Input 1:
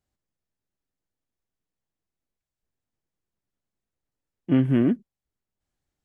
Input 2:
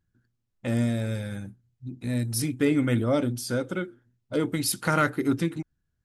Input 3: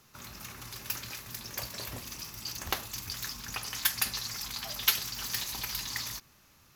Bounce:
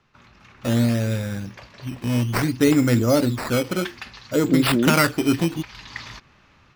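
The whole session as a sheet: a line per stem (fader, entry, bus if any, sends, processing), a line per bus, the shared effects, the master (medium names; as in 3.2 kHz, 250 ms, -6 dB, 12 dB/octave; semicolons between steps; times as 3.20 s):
-3.5 dB, 0.00 s, no send, spectral gate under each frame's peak -25 dB strong; high-pass 320 Hz 6 dB/octave
-3.0 dB, 0.00 s, no send, decimation with a swept rate 11×, swing 100% 0.61 Hz
+0.5 dB, 0.00 s, no send, Chebyshev low-pass 2.6 kHz, order 2; auto duck -10 dB, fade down 0.60 s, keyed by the second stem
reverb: none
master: level rider gain up to 9 dB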